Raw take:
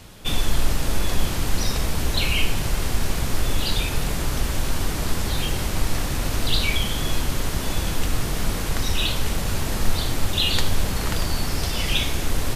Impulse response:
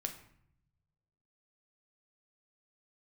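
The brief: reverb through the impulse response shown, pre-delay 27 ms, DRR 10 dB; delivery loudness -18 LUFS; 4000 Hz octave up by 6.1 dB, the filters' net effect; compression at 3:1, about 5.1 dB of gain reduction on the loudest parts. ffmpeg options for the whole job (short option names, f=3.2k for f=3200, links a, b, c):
-filter_complex "[0:a]equalizer=f=4k:t=o:g=7.5,acompressor=threshold=-18dB:ratio=3,asplit=2[a][b];[1:a]atrim=start_sample=2205,adelay=27[c];[b][c]afir=irnorm=-1:irlink=0,volume=-9.5dB[d];[a][d]amix=inputs=2:normalize=0,volume=6dB"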